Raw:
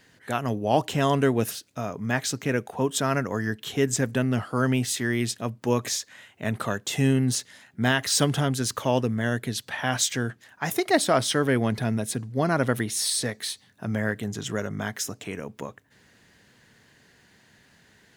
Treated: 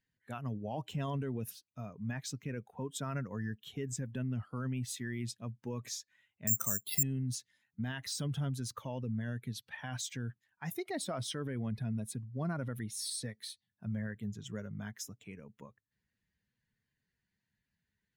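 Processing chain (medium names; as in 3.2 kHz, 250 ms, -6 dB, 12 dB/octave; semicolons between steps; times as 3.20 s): expander on every frequency bin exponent 1.5; peaking EQ 140 Hz +7.5 dB 1.3 oct; peak limiter -20 dBFS, peak gain reduction 11.5 dB; 6.47–7.03 s: careless resampling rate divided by 6×, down filtered, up zero stuff; trim -9 dB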